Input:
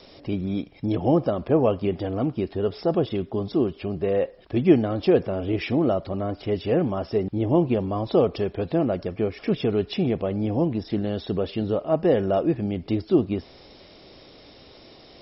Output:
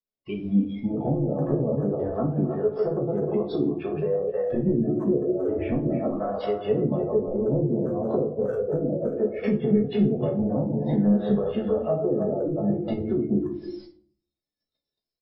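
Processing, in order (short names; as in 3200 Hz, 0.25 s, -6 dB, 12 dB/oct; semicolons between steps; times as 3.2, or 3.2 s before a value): reverse delay 0.13 s, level -4.5 dB; 6.92–9.21 bell 510 Hz +10 dB 0.35 oct; treble ducked by the level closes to 380 Hz, closed at -17 dBFS; speakerphone echo 0.31 s, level -7 dB; spectral noise reduction 17 dB; compressor 5:1, threshold -28 dBFS, peak gain reduction 15 dB; tone controls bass +4 dB, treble 0 dB; gate -52 dBFS, range -40 dB; doubler 14 ms -5.5 dB; shoebox room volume 370 m³, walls furnished, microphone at 1.5 m; gain +1.5 dB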